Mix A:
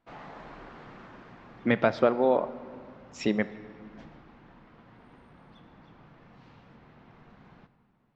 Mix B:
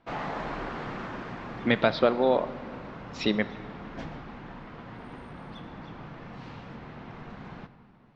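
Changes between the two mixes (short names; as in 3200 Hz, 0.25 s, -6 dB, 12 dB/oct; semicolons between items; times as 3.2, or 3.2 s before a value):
speech: add synth low-pass 4100 Hz, resonance Q 4.2; background +11.5 dB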